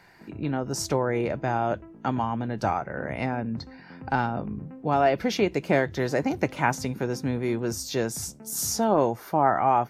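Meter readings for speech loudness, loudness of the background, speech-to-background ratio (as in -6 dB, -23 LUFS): -27.0 LUFS, -45.5 LUFS, 18.5 dB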